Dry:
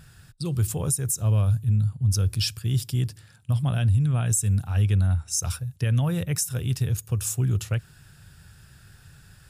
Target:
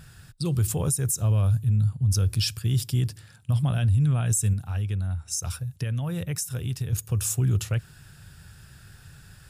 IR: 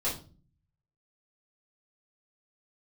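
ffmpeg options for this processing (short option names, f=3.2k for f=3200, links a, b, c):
-filter_complex "[0:a]asettb=1/sr,asplit=3[a][b][c];[a]atrim=end=4.534[d];[b]atrim=start=4.53:end=6.93,asetpts=PTS-STARTPTS,afade=t=in:d=0.004:c=qsin,afade=t=out:st=2.396:d=0.004:c=qsin,acompressor=threshold=-30dB:ratio=3[e];[c]atrim=start=6.926[f];[d][e]acrossfade=d=0.004:c1=hsin:c2=qsin[g];[g][f]acrossfade=d=0.004:c1=qsin:c2=hsin,alimiter=limit=-18dB:level=0:latency=1:release=27,volume=2dB"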